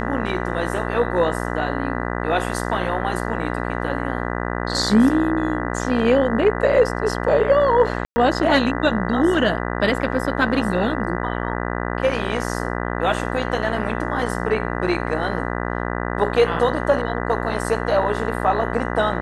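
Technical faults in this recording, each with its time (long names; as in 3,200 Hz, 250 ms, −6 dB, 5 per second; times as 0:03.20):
mains buzz 60 Hz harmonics 33 −25 dBFS
0:08.05–0:08.16: drop-out 110 ms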